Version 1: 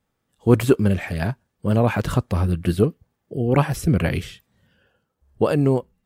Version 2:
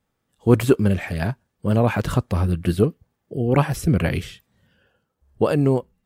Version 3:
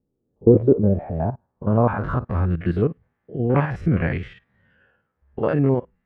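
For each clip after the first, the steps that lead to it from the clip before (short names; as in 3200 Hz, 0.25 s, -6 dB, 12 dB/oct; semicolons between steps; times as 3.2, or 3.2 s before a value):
nothing audible
stepped spectrum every 50 ms; dynamic EQ 2200 Hz, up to -4 dB, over -41 dBFS, Q 0.74; low-pass sweep 370 Hz -> 1900 Hz, 0.14–2.55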